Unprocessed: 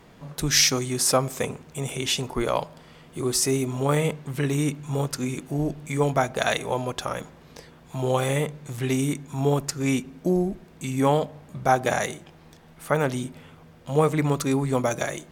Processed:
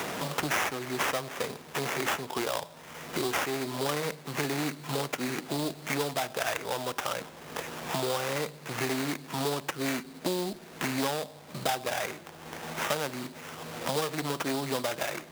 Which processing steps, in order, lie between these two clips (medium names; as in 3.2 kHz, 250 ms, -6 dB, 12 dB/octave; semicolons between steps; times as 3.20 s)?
one-sided clip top -23.5 dBFS; sample-rate reducer 4.3 kHz, jitter 20%; high-pass 560 Hz 6 dB/octave; three bands compressed up and down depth 100%; trim -1.5 dB